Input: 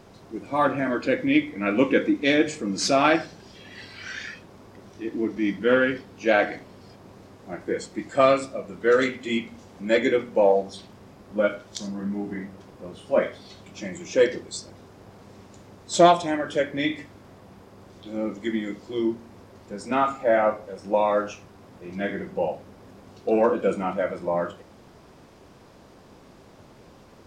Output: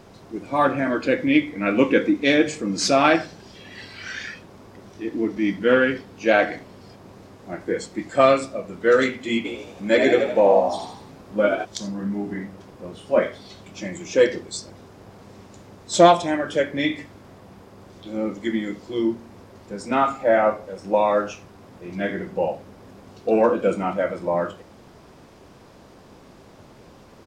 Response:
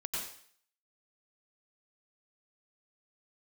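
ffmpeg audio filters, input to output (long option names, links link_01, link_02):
-filter_complex "[0:a]asplit=3[link_01][link_02][link_03];[link_01]afade=type=out:start_time=9.44:duration=0.02[link_04];[link_02]asplit=7[link_05][link_06][link_07][link_08][link_09][link_10][link_11];[link_06]adelay=80,afreqshift=62,volume=-5dB[link_12];[link_07]adelay=160,afreqshift=124,volume=-11.2dB[link_13];[link_08]adelay=240,afreqshift=186,volume=-17.4dB[link_14];[link_09]adelay=320,afreqshift=248,volume=-23.6dB[link_15];[link_10]adelay=400,afreqshift=310,volume=-29.8dB[link_16];[link_11]adelay=480,afreqshift=372,volume=-36dB[link_17];[link_05][link_12][link_13][link_14][link_15][link_16][link_17]amix=inputs=7:normalize=0,afade=type=in:start_time=9.44:duration=0.02,afade=type=out:start_time=11.64:duration=0.02[link_18];[link_03]afade=type=in:start_time=11.64:duration=0.02[link_19];[link_04][link_18][link_19]amix=inputs=3:normalize=0,volume=2.5dB"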